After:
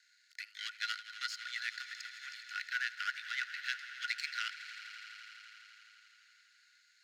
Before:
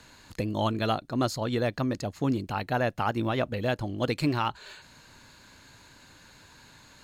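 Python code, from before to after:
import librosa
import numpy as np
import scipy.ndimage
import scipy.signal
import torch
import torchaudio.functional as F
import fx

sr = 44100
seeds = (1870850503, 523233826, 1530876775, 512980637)

p1 = fx.high_shelf(x, sr, hz=6800.0, db=-12.0)
p2 = fx.power_curve(p1, sr, exponent=1.4)
p3 = scipy.signal.sosfilt(scipy.signal.cheby1(6, 9, 1400.0, 'highpass', fs=sr, output='sos'), p2)
p4 = p3 + fx.echo_swell(p3, sr, ms=83, loudest=5, wet_db=-17.0, dry=0)
y = p4 * 10.0 ** (8.0 / 20.0)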